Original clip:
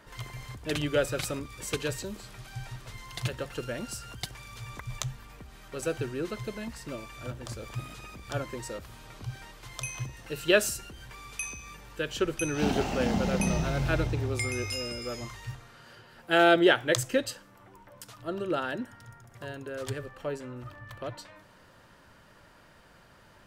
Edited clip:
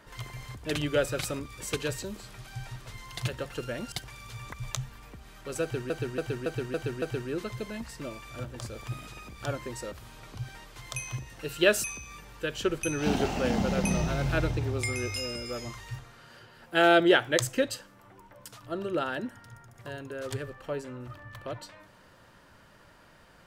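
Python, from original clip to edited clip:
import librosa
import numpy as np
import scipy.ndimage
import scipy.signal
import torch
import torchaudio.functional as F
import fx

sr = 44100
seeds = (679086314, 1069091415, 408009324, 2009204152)

y = fx.edit(x, sr, fx.cut(start_s=3.92, length_s=0.27),
    fx.repeat(start_s=5.89, length_s=0.28, count=6),
    fx.cut(start_s=10.71, length_s=0.69), tone=tone)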